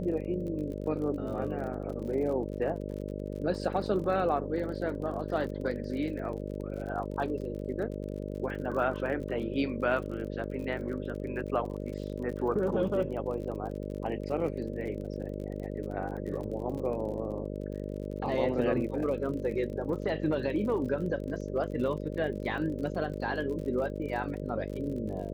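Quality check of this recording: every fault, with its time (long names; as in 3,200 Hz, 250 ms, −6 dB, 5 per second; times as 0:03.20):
mains buzz 50 Hz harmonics 12 −37 dBFS
surface crackle 41 per second −39 dBFS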